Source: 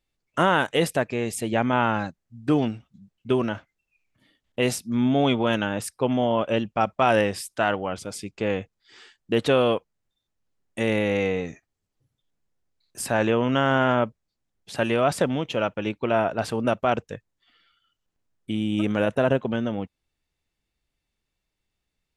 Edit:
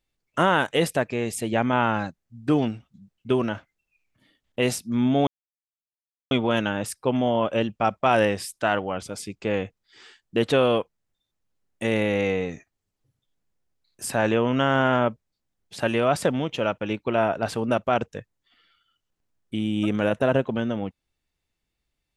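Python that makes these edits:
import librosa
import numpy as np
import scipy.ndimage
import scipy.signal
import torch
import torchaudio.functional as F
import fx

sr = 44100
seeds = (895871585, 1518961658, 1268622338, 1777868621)

y = fx.edit(x, sr, fx.insert_silence(at_s=5.27, length_s=1.04), tone=tone)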